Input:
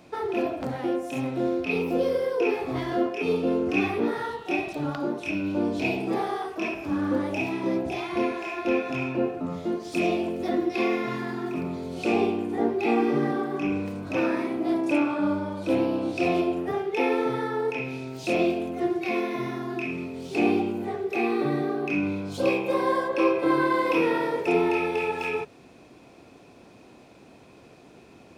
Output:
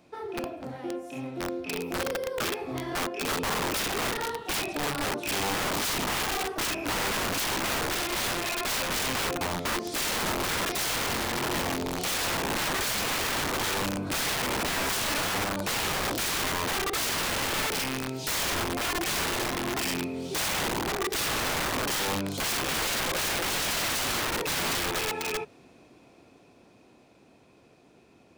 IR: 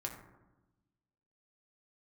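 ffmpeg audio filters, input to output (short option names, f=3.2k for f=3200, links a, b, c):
-af "highshelf=f=5.2k:g=2,dynaudnorm=f=240:g=31:m=14dB,aeval=exprs='(mod(6.68*val(0)+1,2)-1)/6.68':c=same,volume=-7.5dB"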